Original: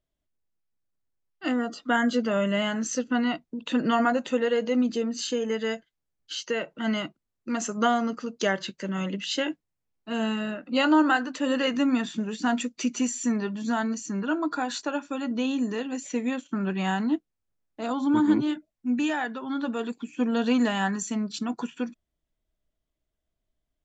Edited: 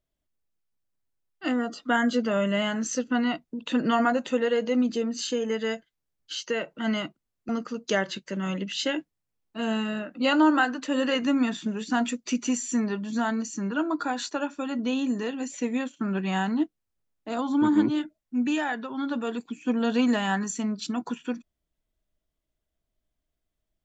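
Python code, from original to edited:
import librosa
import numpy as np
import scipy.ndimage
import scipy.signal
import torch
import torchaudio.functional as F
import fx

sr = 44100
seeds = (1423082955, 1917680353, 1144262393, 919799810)

y = fx.edit(x, sr, fx.cut(start_s=7.49, length_s=0.52), tone=tone)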